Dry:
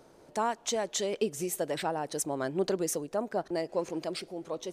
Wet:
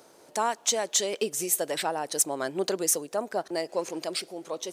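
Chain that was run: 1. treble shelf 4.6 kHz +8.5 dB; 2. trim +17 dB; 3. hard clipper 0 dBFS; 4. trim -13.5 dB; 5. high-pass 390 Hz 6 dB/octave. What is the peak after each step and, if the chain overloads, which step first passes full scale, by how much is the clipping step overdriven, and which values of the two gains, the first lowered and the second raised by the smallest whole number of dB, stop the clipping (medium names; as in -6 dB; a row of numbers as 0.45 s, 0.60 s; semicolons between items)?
-12.5 dBFS, +4.5 dBFS, 0.0 dBFS, -13.5 dBFS, -13.0 dBFS; step 2, 4.5 dB; step 2 +12 dB, step 4 -8.5 dB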